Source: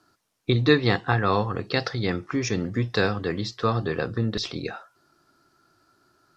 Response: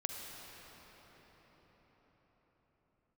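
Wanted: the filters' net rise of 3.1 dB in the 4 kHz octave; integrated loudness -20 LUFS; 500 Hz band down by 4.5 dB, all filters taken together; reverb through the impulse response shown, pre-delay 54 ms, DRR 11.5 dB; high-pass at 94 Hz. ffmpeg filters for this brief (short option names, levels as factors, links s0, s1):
-filter_complex "[0:a]highpass=94,equalizer=f=500:t=o:g=-5.5,equalizer=f=4000:t=o:g=3.5,asplit=2[s0][s1];[1:a]atrim=start_sample=2205,adelay=54[s2];[s1][s2]afir=irnorm=-1:irlink=0,volume=0.224[s3];[s0][s3]amix=inputs=2:normalize=0,volume=2"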